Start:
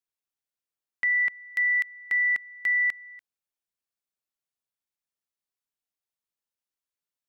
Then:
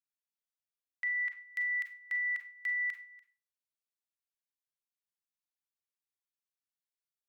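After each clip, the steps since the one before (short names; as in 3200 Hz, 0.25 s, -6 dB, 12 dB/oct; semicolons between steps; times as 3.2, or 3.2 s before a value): HPF 1200 Hz 12 dB/oct; Schroeder reverb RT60 0.31 s, combs from 32 ms, DRR 7.5 dB; gain -8.5 dB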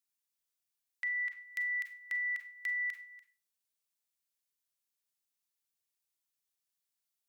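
high shelf 3000 Hz +10 dB; in parallel at -2 dB: compressor, threshold -40 dBFS, peak gain reduction 11.5 dB; on the sum: gain -6.5 dB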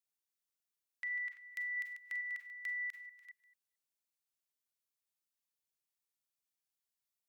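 reverse delay 0.221 s, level -11 dB; gain -5 dB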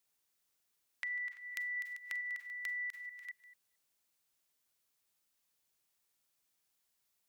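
dynamic EQ 2200 Hz, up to -5 dB, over -52 dBFS, Q 0.98; compressor 2:1, threshold -52 dBFS, peak gain reduction 6 dB; gain +10 dB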